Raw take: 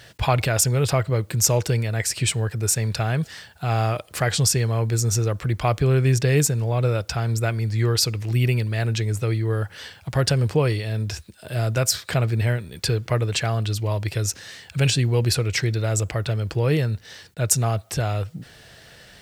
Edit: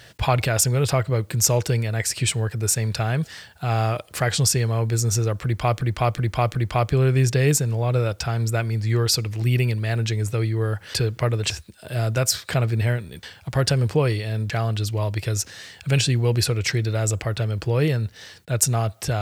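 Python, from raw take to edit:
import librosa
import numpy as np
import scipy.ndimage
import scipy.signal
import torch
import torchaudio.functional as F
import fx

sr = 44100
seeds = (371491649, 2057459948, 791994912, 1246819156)

y = fx.edit(x, sr, fx.repeat(start_s=5.44, length_s=0.37, count=4),
    fx.swap(start_s=9.83, length_s=1.27, other_s=12.83, other_length_s=0.56), tone=tone)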